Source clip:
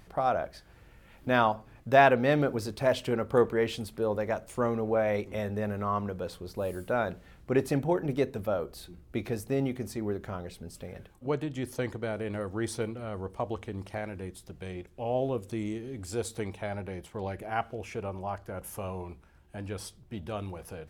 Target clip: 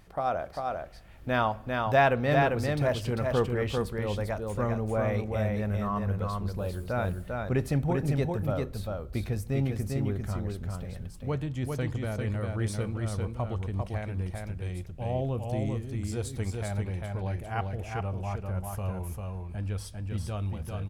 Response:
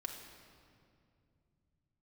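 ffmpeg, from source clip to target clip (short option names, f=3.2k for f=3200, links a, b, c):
-filter_complex "[0:a]asplit=2[a][b];[1:a]atrim=start_sample=2205,asetrate=70560,aresample=44100[c];[b][c]afir=irnorm=-1:irlink=0,volume=-14dB[d];[a][d]amix=inputs=2:normalize=0,asubboost=boost=4:cutoff=160,aecho=1:1:397:0.668,volume=-2.5dB"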